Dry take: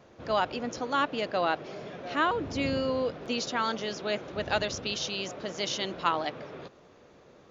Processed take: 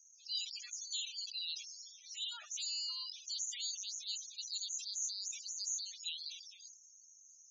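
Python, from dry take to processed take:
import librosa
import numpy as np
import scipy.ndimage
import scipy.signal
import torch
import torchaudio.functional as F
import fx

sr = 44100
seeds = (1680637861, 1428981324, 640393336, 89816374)

p1 = fx.spec_clip(x, sr, under_db=25)
p2 = fx.rider(p1, sr, range_db=4, speed_s=0.5)
p3 = p1 + (p2 * librosa.db_to_amplitude(-2.0))
p4 = fx.bandpass_q(p3, sr, hz=6600.0, q=3.4)
p5 = fx.spec_topn(p4, sr, count=16)
p6 = fx.sustainer(p5, sr, db_per_s=81.0)
y = p6 * librosa.db_to_amplitude(2.5)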